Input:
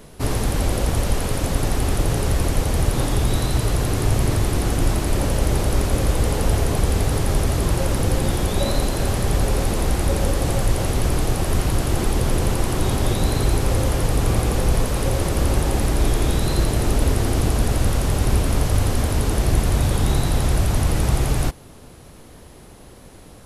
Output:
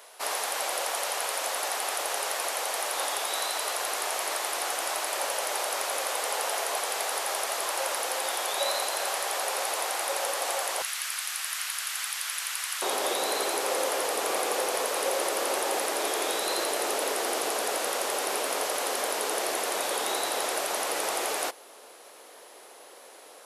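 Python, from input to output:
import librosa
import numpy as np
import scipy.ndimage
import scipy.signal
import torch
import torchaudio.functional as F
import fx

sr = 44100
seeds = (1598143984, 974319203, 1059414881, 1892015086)

y = fx.highpass(x, sr, hz=fx.steps((0.0, 630.0), (10.82, 1400.0), (12.82, 460.0)), slope=24)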